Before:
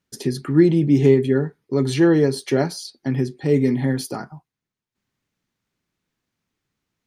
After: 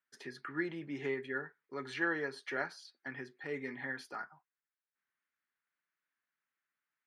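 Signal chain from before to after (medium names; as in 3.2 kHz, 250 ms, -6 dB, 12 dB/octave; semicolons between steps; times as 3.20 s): band-pass filter 1.6 kHz, Q 2.5; trim -2.5 dB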